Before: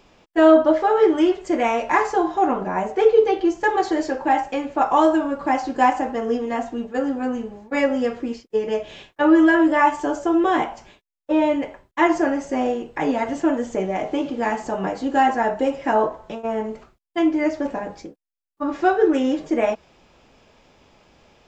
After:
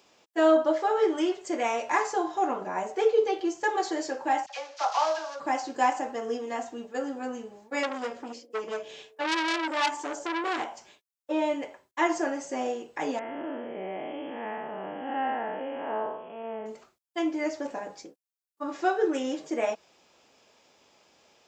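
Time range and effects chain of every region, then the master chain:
4.46–5.40 s: CVSD coder 32 kbps + high-pass 570 Hz 24 dB/octave + phase dispersion lows, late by 45 ms, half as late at 1.4 kHz
7.83–10.66 s: band-passed feedback delay 64 ms, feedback 74%, band-pass 470 Hz, level -18 dB + transformer saturation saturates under 2.3 kHz
13.19–16.66 s: spectral blur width 238 ms + brick-wall FIR low-pass 3.4 kHz
whole clip: high-pass 90 Hz 12 dB/octave; tone controls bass -10 dB, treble +9 dB; trim -7 dB

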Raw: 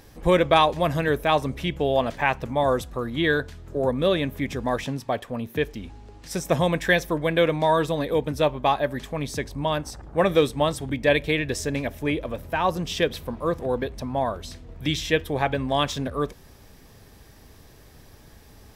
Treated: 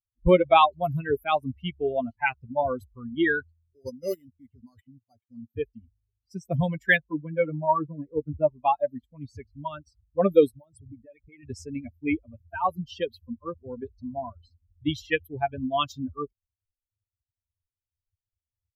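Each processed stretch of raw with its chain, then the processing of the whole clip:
3.52–5.49 s: careless resampling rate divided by 8×, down none, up hold + level held to a coarse grid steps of 11 dB
6.97–8.50 s: distance through air 480 m + doubling 13 ms -9.5 dB
10.55–11.43 s: resonances exaggerated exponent 1.5 + compression, threshold -28 dBFS + short-mantissa float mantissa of 4-bit
whole clip: expander on every frequency bin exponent 3; level-controlled noise filter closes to 2.7 kHz, open at -27.5 dBFS; high-order bell 6.3 kHz -10.5 dB; trim +5 dB

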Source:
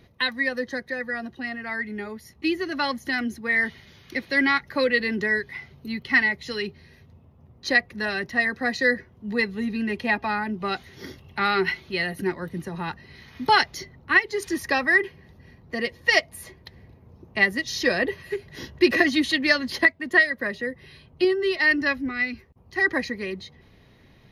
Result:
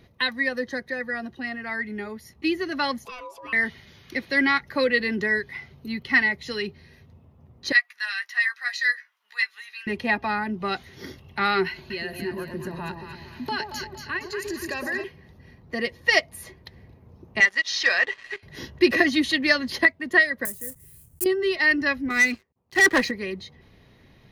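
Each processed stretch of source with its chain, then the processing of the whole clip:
3.05–3.53 s: compression 2.5:1, threshold -37 dBFS + ring modulator 760 Hz
7.72–9.87 s: high-pass 1.3 kHz 24 dB/octave + doubling 14 ms -8 dB
11.67–15.04 s: rippled EQ curve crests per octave 1.4, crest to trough 8 dB + compression 2.5:1, threshold -31 dBFS + echo whose repeats swap between lows and highs 116 ms, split 850 Hz, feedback 64%, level -3 dB
17.40–18.43 s: high-pass 1.2 kHz + waveshaping leveller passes 2 + distance through air 110 m
20.45–21.26 s: block-companded coder 3-bit + FFT filter 100 Hz 0 dB, 240 Hz -10 dB, 3.9 kHz -21 dB, 9.4 kHz +10 dB
22.10–23.11 s: high-pass 190 Hz 6 dB/octave + waveshaping leveller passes 3 + upward expansion, over -31 dBFS
whole clip: none

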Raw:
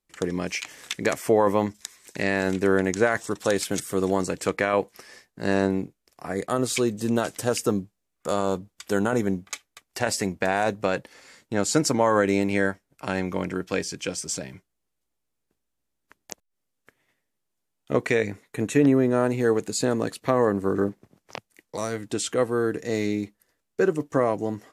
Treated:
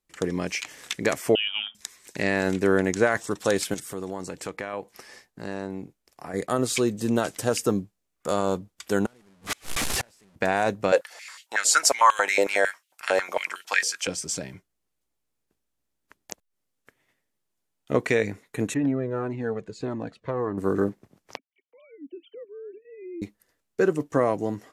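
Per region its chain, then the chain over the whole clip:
1.35–1.75 s: frequency inversion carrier 3.4 kHz + rippled Chebyshev high-pass 210 Hz, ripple 9 dB + upward compressor, threshold -33 dBFS
3.74–6.34 s: peaking EQ 840 Hz +3.5 dB 0.33 oct + compression 2:1, threshold -36 dBFS
9.06–10.36 s: one-bit delta coder 64 kbps, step -19.5 dBFS + inverted gate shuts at -22 dBFS, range -34 dB
10.92–14.07 s: treble shelf 3.6 kHz +8.5 dB + step-sequenced high-pass 11 Hz 520–2900 Hz
18.74–20.58 s: tape spacing loss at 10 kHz 25 dB + Shepard-style flanger falling 1.7 Hz
21.37–23.22 s: formants replaced by sine waves + cascade formant filter i + tape noise reduction on one side only encoder only
whole clip: none

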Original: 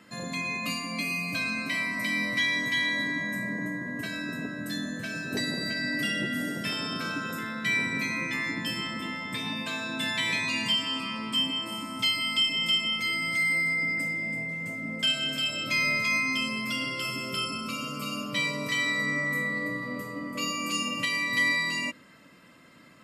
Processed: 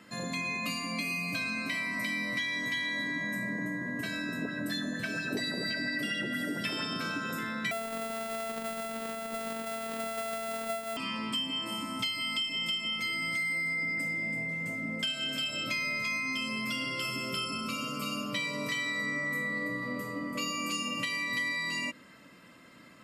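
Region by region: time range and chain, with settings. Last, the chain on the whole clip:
4.42–6.85 s: band-stop 6.6 kHz, Q 11 + sweeping bell 4.3 Hz 310–4200 Hz +8 dB
7.71–10.97 s: sorted samples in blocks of 64 samples + robot voice 225 Hz
whole clip: hum notches 50/100/150 Hz; compression, threshold -30 dBFS

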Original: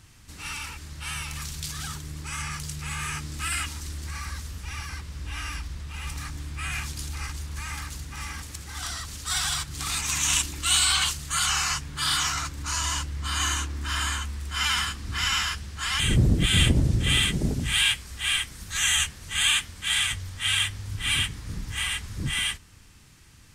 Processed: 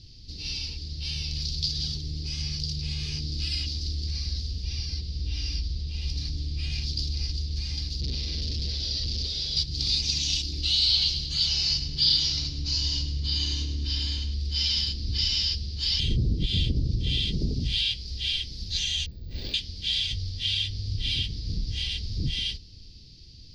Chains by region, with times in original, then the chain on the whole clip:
8.01–9.57 s: one-bit comparator + distance through air 65 m + band-stop 770 Hz, Q 5.2
10.60–14.34 s: treble shelf 8 kHz -9 dB + feedback delay 105 ms, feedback 43%, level -11 dB
19.06–19.54 s: median filter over 15 samples + treble shelf 3.3 kHz -10 dB + careless resampling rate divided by 2×, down none, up zero stuff
whole clip: bass shelf 72 Hz +10 dB; compression 3:1, threshold -24 dBFS; FFT filter 450 Hz 0 dB, 1.3 kHz -30 dB, 4.8 kHz +15 dB, 8 kHz -24 dB

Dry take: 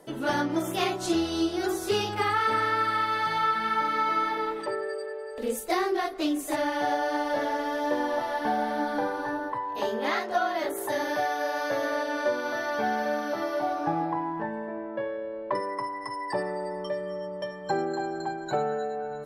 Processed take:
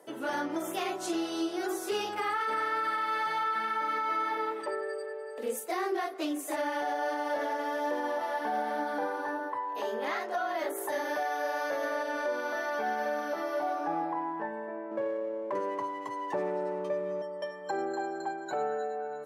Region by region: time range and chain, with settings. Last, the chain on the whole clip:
14.91–17.22 s: tilt EQ -3.5 dB/octave + sliding maximum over 5 samples
whole clip: high-pass 320 Hz 12 dB/octave; peaking EQ 4.1 kHz -5 dB 0.83 oct; peak limiter -21 dBFS; trim -2 dB

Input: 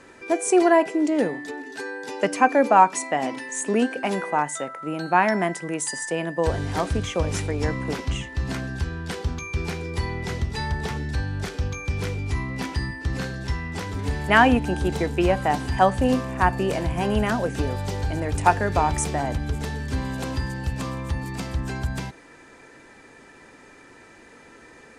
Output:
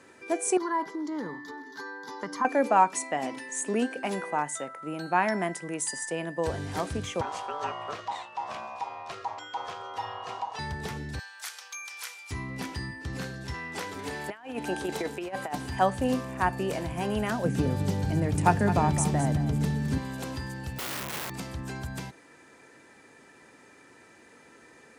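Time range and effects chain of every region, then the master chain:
0.57–2.45 s: static phaser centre 2.6 kHz, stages 6 + compression, threshold -24 dBFS + high-order bell 880 Hz +12 dB 1 oct
7.21–10.59 s: low-pass 5.2 kHz + ring modulator 880 Hz
11.19–12.31 s: high-pass 920 Hz 24 dB/octave + treble shelf 5.8 kHz +10 dB
13.54–15.54 s: tone controls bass -9 dB, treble -2 dB + compressor with a negative ratio -25 dBFS, ratio -0.5 + high-pass 160 Hz 6 dB/octave
17.44–19.98 s: peaking EQ 170 Hz +13 dB 1.5 oct + delay 213 ms -11.5 dB
20.78–21.30 s: brick-wall FIR low-pass 2.8 kHz + peaking EQ 760 Hz +13 dB 0.66 oct + integer overflow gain 25 dB
whole clip: high-pass 91 Hz; treble shelf 11 kHz +10 dB; trim -6 dB

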